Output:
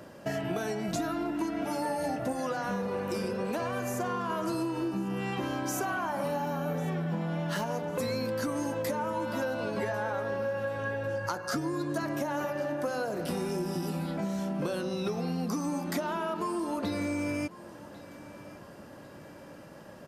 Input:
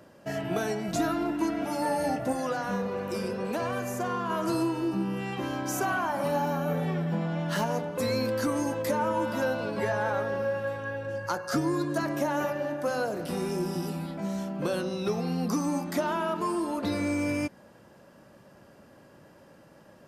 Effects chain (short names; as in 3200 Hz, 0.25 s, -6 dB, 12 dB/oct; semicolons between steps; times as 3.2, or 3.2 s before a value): compressor 6:1, threshold -35 dBFS, peak gain reduction 11.5 dB; feedback echo 1.097 s, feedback 41%, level -19 dB; gain +5.5 dB